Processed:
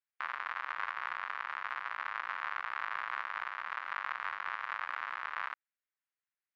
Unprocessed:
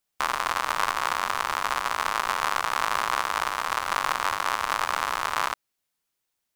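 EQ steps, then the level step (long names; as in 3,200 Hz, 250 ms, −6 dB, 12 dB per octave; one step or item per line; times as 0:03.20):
resonant band-pass 1,800 Hz, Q 1.9
high-frequency loss of the air 190 metres
−5.5 dB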